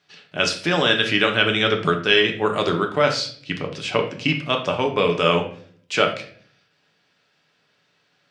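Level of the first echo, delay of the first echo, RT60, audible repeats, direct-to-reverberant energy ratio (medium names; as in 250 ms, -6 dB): no echo, no echo, 0.55 s, no echo, 2.5 dB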